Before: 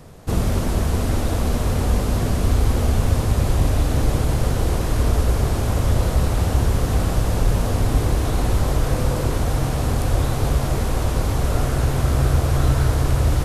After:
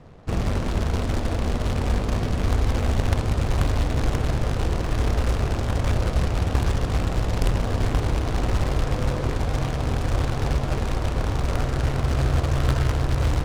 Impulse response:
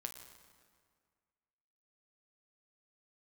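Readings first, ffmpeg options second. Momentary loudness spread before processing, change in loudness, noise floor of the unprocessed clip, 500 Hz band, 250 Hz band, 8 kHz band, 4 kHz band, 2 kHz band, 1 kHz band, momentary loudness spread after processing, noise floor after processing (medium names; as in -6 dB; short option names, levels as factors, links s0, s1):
3 LU, -3.5 dB, -23 dBFS, -3.5 dB, -3.5 dB, -8.0 dB, -2.5 dB, -1.0 dB, -2.5 dB, 3 LU, -27 dBFS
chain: -af "acrusher=bits=2:mode=log:mix=0:aa=0.000001,adynamicsmooth=sensitivity=2:basefreq=3200,volume=0.631"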